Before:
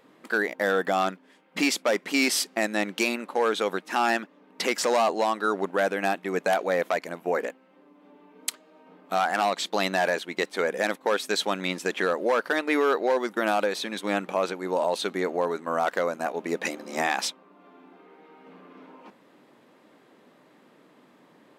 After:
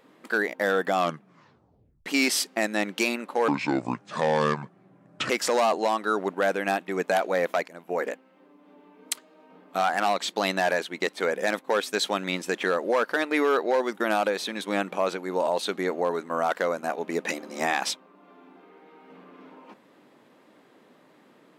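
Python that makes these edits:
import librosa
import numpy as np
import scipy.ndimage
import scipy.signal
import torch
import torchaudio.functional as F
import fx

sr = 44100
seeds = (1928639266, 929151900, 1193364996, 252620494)

y = fx.edit(x, sr, fx.tape_stop(start_s=0.96, length_s=1.1),
    fx.speed_span(start_s=3.48, length_s=1.18, speed=0.65),
    fx.fade_in_from(start_s=7.04, length_s=0.4, floor_db=-13.5), tone=tone)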